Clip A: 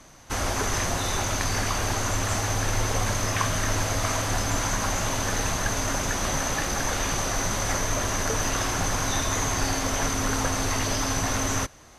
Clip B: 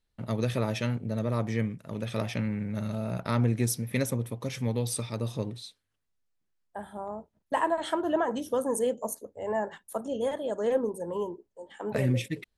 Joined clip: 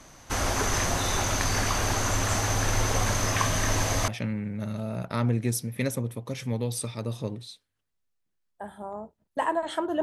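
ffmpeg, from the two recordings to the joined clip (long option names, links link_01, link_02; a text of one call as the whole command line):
ffmpeg -i cue0.wav -i cue1.wav -filter_complex "[0:a]asettb=1/sr,asplit=3[link_01][link_02][link_03];[link_01]atrim=end=3.374[link_04];[link_02]atrim=start=3.37:end=4.08,asetpts=PTS-STARTPTS,afade=type=in:duration=0.004:curve=qsin,afade=type=out:start_time=0.706:duration=0.004:curve=qsin,bandreject=frequency=1400:width=11[link_05];[link_03]atrim=start=4.076[link_06];[link_04][link_05]acrossfade=duration=0.004:curve1=hsin:curve2=qsin[link_07];[link_07][link_06]acrossfade=duration=0.004:curve1=qsin:curve2=hsin,apad=whole_dur=10.02,atrim=end=10.02,atrim=end=4.082[link_08];[1:a]atrim=start=2.228:end=8.17[link_09];[link_08][link_09]acrossfade=duration=0.004:curve1=hsin:curve2=hsin" out.wav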